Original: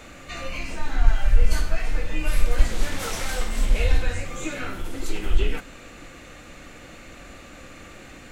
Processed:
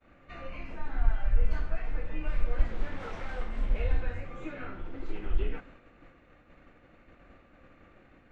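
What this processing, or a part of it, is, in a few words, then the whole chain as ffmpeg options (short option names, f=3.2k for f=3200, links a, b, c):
hearing-loss simulation: -filter_complex "[0:a]asettb=1/sr,asplit=3[a][b][c];[a]atrim=end=4.514[d];[b]atrim=start=4.51:end=5.09,asetpts=PTS-STARTPTS,afade=t=in:d=0.004:c=qsin,afade=t=out:st=0.576:d=0.004:c=qsin,lowpass=6.3k[e];[c]atrim=start=5.086[f];[d][e]acrossfade=d=0.004:c1=hsin:c2=qsin[g];[g][f]acrossfade=d=0.004:c1=qsin:c2=hsin,lowpass=1.9k,agate=range=-33dB:threshold=-38dB:ratio=3:detection=peak,volume=-8dB"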